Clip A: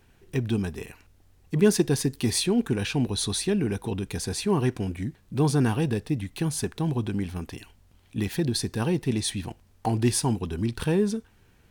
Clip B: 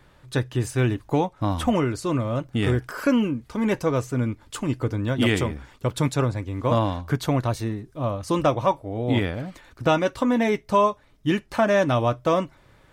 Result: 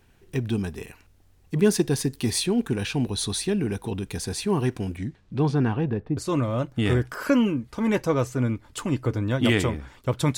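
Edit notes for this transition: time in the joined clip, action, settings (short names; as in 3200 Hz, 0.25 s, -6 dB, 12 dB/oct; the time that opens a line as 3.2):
clip A
4.97–6.17 LPF 8500 Hz -> 1100 Hz
6.17 switch to clip B from 1.94 s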